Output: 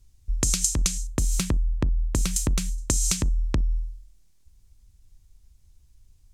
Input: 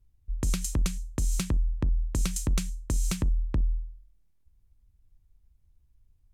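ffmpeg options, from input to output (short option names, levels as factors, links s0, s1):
-af "asetnsamples=n=441:p=0,asendcmd='1.07 equalizer g 3.5;2.78 equalizer g 13',equalizer=f=6500:w=0.57:g=14.5,acompressor=threshold=0.0447:ratio=5,volume=2.24"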